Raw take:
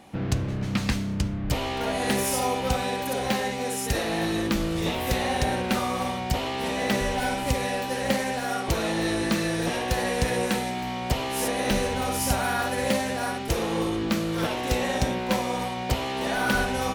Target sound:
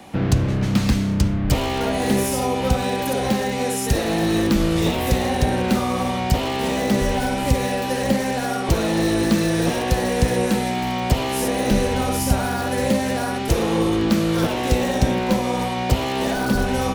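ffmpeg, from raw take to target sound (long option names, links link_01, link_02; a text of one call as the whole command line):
ffmpeg -i in.wav -filter_complex "[0:a]acrossover=split=450[link_01][link_02];[link_02]acompressor=threshold=-31dB:ratio=10[link_03];[link_01][link_03]amix=inputs=2:normalize=0,acrossover=split=190|1500|2800[link_04][link_05][link_06][link_07];[link_06]aeval=exprs='(mod(84.1*val(0)+1,2)-1)/84.1':channel_layout=same[link_08];[link_04][link_05][link_08][link_07]amix=inputs=4:normalize=0,volume=8dB" out.wav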